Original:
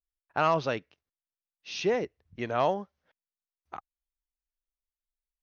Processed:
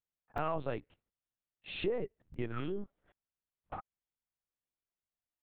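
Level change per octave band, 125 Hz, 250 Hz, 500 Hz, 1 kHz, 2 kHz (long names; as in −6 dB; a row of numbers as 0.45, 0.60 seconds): −4.0, −5.0, −8.5, −12.0, −10.0 decibels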